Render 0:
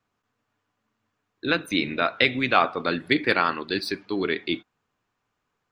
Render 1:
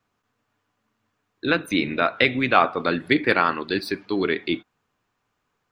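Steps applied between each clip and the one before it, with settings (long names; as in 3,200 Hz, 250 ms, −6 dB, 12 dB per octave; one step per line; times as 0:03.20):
dynamic equaliser 5,300 Hz, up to −6 dB, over −38 dBFS, Q 0.75
level +3 dB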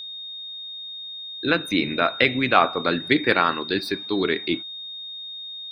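steady tone 3,700 Hz −33 dBFS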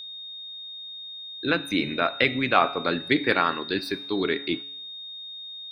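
tuned comb filter 140 Hz, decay 0.74 s, harmonics all, mix 50%
level +2.5 dB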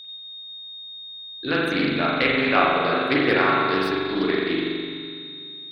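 feedback echo with a low-pass in the loop 371 ms, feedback 37%, low-pass 1,000 Hz, level −12.5 dB
spring reverb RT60 2 s, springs 42 ms, chirp 75 ms, DRR −4.5 dB
highs frequency-modulated by the lows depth 0.17 ms
level −2 dB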